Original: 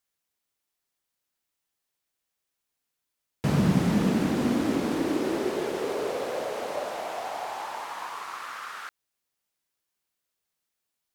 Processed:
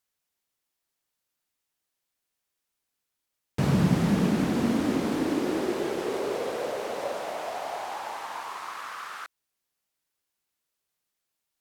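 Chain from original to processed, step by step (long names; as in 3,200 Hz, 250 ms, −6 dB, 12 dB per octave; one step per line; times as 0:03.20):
wrong playback speed 25 fps video run at 24 fps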